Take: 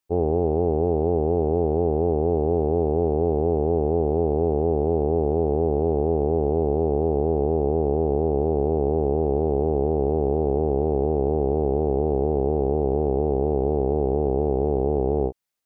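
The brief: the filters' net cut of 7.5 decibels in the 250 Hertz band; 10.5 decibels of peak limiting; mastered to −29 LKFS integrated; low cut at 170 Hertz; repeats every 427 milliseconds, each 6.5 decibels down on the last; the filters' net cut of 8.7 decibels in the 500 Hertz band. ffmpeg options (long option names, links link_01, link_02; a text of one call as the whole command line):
ffmpeg -i in.wav -af "highpass=170,equalizer=frequency=250:width_type=o:gain=-5.5,equalizer=frequency=500:width_type=o:gain=-9,alimiter=level_in=4.5dB:limit=-24dB:level=0:latency=1,volume=-4.5dB,aecho=1:1:427|854|1281|1708|2135|2562:0.473|0.222|0.105|0.0491|0.0231|0.0109,volume=10dB" out.wav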